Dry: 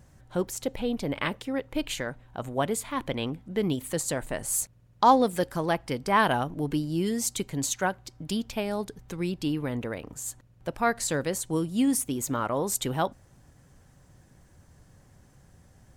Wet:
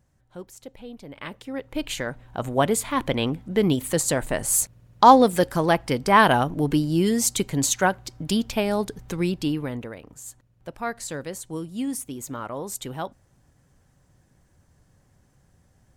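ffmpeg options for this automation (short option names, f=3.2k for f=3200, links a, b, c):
-af "volume=6.5dB,afade=t=in:st=1.12:d=0.54:silence=0.298538,afade=t=in:st=1.66:d=0.85:silence=0.446684,afade=t=out:st=9.16:d=0.78:silence=0.281838"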